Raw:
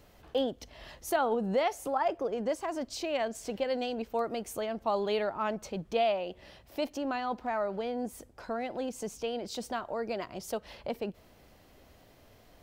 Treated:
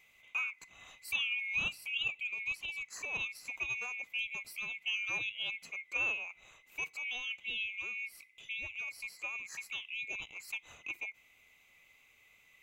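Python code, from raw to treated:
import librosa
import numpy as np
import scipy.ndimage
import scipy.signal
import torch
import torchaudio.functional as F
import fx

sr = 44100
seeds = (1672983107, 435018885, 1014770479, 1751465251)

y = fx.band_swap(x, sr, width_hz=2000)
y = y * librosa.db_to_amplitude(-6.5)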